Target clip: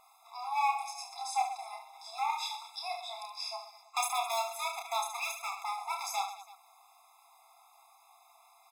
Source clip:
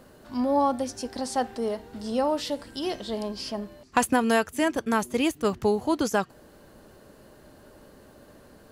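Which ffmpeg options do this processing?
ffmpeg -i in.wav -af "aeval=exprs='0.112*(abs(mod(val(0)/0.112+3,4)-2)-1)':channel_layout=same,aecho=1:1:30|72|130.8|213.1|328.4:0.631|0.398|0.251|0.158|0.1,afftfilt=real='re*eq(mod(floor(b*sr/1024/680),2),1)':imag='im*eq(mod(floor(b*sr/1024/680),2),1)':win_size=1024:overlap=0.75,volume=-2dB" out.wav

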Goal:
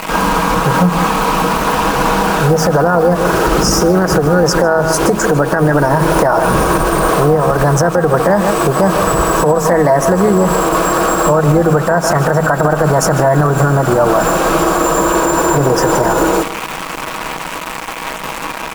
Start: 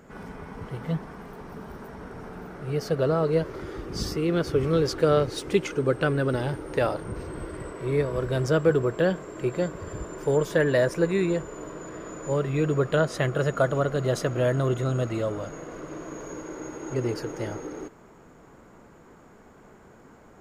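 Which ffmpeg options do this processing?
ffmpeg -i in.wav -filter_complex "[0:a]asuperstop=centerf=2700:order=8:qfactor=0.84,bandreject=frequency=50:width_type=h:width=6,bandreject=frequency=100:width_type=h:width=6,bandreject=frequency=150:width_type=h:width=6,bandreject=frequency=200:width_type=h:width=6,bandreject=frequency=250:width_type=h:width=6,acrusher=bits=7:mix=0:aa=0.000001,aecho=1:1:6.8:0.36,asetrate=48000,aresample=44100,asplit=2[link_01][link_02];[link_02]aecho=0:1:150:0.158[link_03];[link_01][link_03]amix=inputs=2:normalize=0,acompressor=threshold=-27dB:ratio=12,tremolo=f=280:d=0.462,equalizer=frequency=100:width_type=o:width=0.67:gain=-12,equalizer=frequency=400:width_type=o:width=0.67:gain=-4,equalizer=frequency=1000:width_type=o:width=0.67:gain=8,equalizer=frequency=2500:width_type=o:width=0.67:gain=7,alimiter=level_in=28.5dB:limit=-1dB:release=50:level=0:latency=1,volume=-1dB" out.wav

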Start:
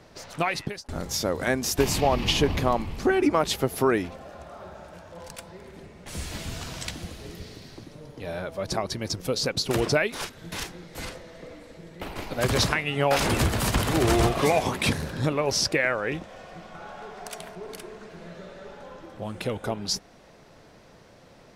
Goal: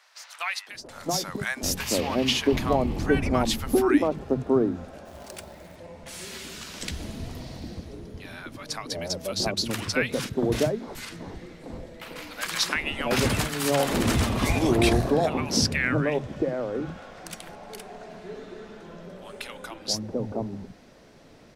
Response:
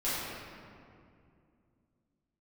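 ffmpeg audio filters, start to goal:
-filter_complex "[0:a]equalizer=frequency=240:width_type=o:width=0.68:gain=7,acrossover=split=190|950[link_01][link_02][link_03];[link_02]adelay=680[link_04];[link_01]adelay=740[link_05];[link_05][link_04][link_03]amix=inputs=3:normalize=0,asettb=1/sr,asplit=3[link_06][link_07][link_08];[link_06]atrim=end=5.054[link_09];[link_07]atrim=start=5.05:end=5.76,asetpts=PTS-STARTPTS,afade=type=in:duration=0.004:curve=qsin,afade=type=out:start_time=0.706:duration=0.004:curve=qsin,acrusher=bits=3:mode=log:mix=0:aa=0.000001[link_10];[link_08]atrim=start=5.756[link_11];[link_09][link_10]acrossfade=duration=0.004:curve1=hsin:curve2=qsin[link_12];[link_12][link_11]acrossfade=duration=0.004:curve1=qsin:curve2=hsin"

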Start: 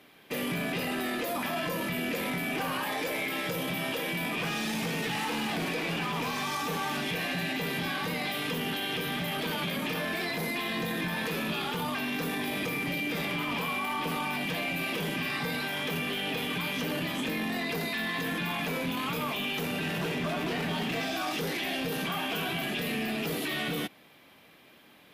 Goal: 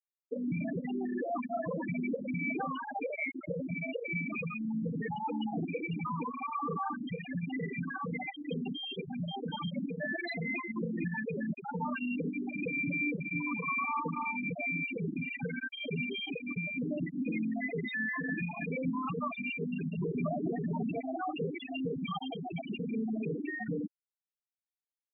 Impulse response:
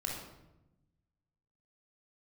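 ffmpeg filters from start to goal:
-af "lowshelf=frequency=69:gain=-3.5,afftfilt=real='re*gte(hypot(re,im),0.112)':imag='im*gte(hypot(re,im),0.112)':win_size=1024:overlap=0.75,volume=2dB"

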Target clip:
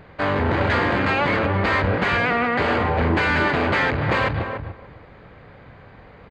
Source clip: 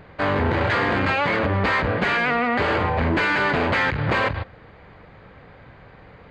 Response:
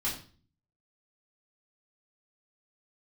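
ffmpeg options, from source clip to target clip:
-filter_complex "[0:a]asplit=2[link_01][link_02];[link_02]adelay=290,lowpass=frequency=960:poles=1,volume=-4.5dB,asplit=2[link_03][link_04];[link_04]adelay=290,lowpass=frequency=960:poles=1,volume=0.18,asplit=2[link_05][link_06];[link_06]adelay=290,lowpass=frequency=960:poles=1,volume=0.18[link_07];[link_01][link_03][link_05][link_07]amix=inputs=4:normalize=0"

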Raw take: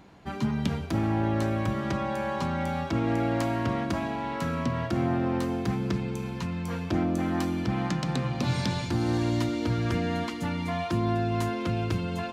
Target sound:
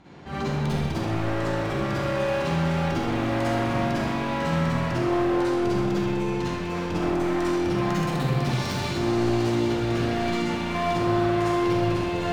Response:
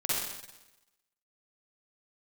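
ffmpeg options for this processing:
-filter_complex "[0:a]lowpass=7000,asoftclip=type=hard:threshold=-31dB[link_01];[1:a]atrim=start_sample=2205[link_02];[link_01][link_02]afir=irnorm=-1:irlink=0"

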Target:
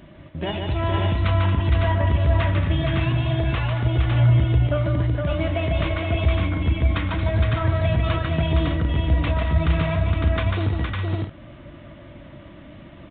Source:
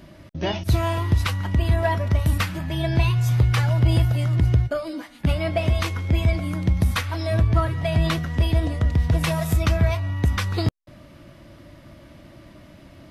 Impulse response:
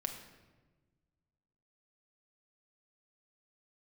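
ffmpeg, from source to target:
-af "alimiter=limit=-16.5dB:level=0:latency=1:release=35,aecho=1:1:147|227|464|556|608:0.596|0.299|0.596|0.668|0.316,aresample=8000,aresample=44100"

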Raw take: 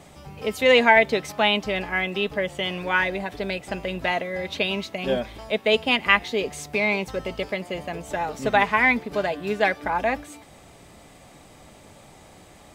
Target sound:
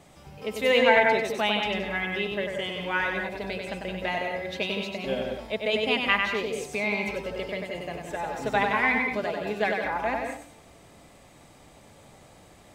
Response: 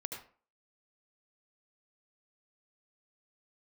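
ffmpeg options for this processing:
-filter_complex "[0:a]asplit=2[link_01][link_02];[1:a]atrim=start_sample=2205,adelay=96[link_03];[link_02][link_03]afir=irnorm=-1:irlink=0,volume=-1dB[link_04];[link_01][link_04]amix=inputs=2:normalize=0,volume=-6dB"

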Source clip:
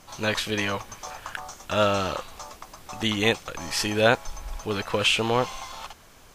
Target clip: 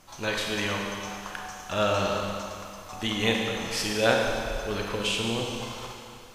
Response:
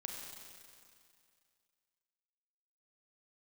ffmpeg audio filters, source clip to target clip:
-filter_complex "[0:a]asettb=1/sr,asplit=3[link_01][link_02][link_03];[link_01]atrim=end=4.944[link_04];[link_02]atrim=start=4.94:end=5.6,asetpts=PTS-STARTPTS,afade=type=in:duration=0.004:curve=qsin,afade=type=out:start_time=0.656:duration=0.004:curve=qsin,acrossover=split=450|3000[link_05][link_06][link_07];[link_06]acompressor=threshold=-35dB:ratio=6[link_08];[link_05][link_08][link_07]amix=inputs=3:normalize=0[link_09];[link_03]atrim=start=5.596[link_10];[link_04][link_09]acrossfade=duration=0.004:curve1=hsin:curve2=qsin[link_11];[link_11][link_10]acrossfade=duration=0.004:curve1=qsin:curve2=hsin[link_12];[1:a]atrim=start_sample=2205[link_13];[link_12][link_13]afir=irnorm=-1:irlink=0"

